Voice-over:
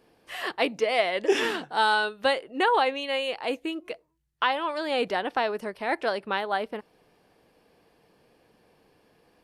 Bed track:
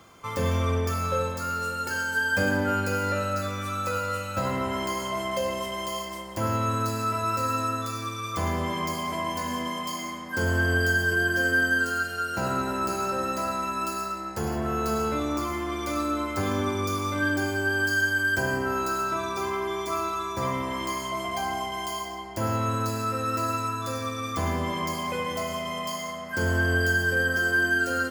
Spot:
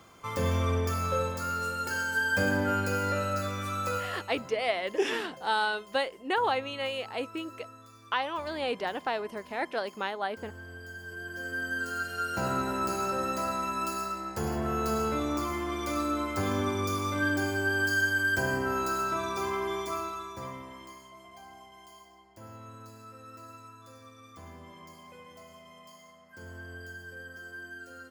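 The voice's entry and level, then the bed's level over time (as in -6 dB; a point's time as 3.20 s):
3.70 s, -5.0 dB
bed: 3.94 s -2.5 dB
4.55 s -21.5 dB
10.84 s -21.5 dB
12.24 s -2.5 dB
19.75 s -2.5 dB
21.12 s -20.5 dB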